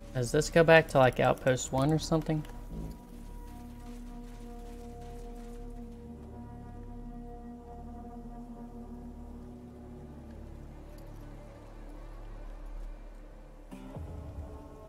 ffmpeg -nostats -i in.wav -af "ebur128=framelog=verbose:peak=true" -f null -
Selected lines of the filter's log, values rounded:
Integrated loudness:
  I:         -27.3 LUFS
  Threshold: -44.0 LUFS
Loudness range:
  LRA:        20.9 LU
  Threshold: -57.4 LUFS
  LRA low:   -48.9 LUFS
  LRA high:  -28.0 LUFS
True peak:
  Peak:       -7.2 dBFS